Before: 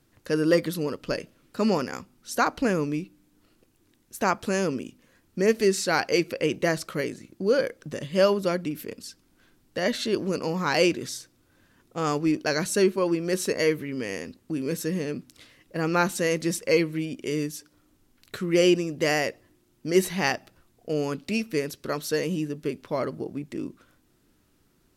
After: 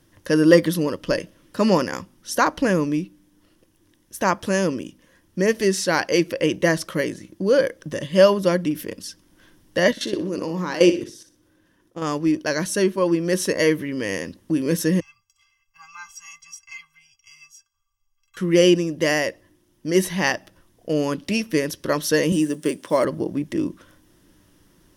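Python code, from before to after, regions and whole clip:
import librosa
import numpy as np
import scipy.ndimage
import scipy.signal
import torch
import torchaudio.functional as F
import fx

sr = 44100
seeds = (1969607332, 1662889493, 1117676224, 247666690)

y = fx.chain(x, sr, fx.peak_eq(hz=340.0, db=6.0, octaves=0.88),
    fx.level_steps(step_db=16),
    fx.room_flutter(wall_m=10.4, rt60_s=0.35), at=(9.91, 12.02))
y = fx.chain(y, sr, fx.ellip_bandstop(low_hz=100.0, high_hz=1000.0, order=3, stop_db=60),
    fx.fixed_phaser(hz=2600.0, stages=8),
    fx.stiff_resonator(f0_hz=240.0, decay_s=0.22, stiffness=0.03), at=(15.0, 18.37))
y = fx.chain(y, sr, fx.block_float(bits=7),
    fx.highpass(hz=190.0, slope=12),
    fx.peak_eq(hz=8600.0, db=14.0, octaves=0.48), at=(22.32, 23.05))
y = fx.ripple_eq(y, sr, per_octave=1.2, db=6)
y = fx.rider(y, sr, range_db=4, speed_s=2.0)
y = y * librosa.db_to_amplitude(4.0)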